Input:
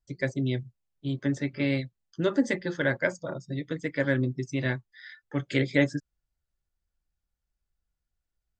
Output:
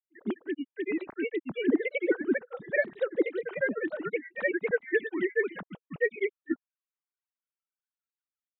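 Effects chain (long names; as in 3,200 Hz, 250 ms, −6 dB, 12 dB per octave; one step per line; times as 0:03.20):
three sine waves on the formant tracks
granular cloud, spray 918 ms, pitch spread up and down by 3 semitones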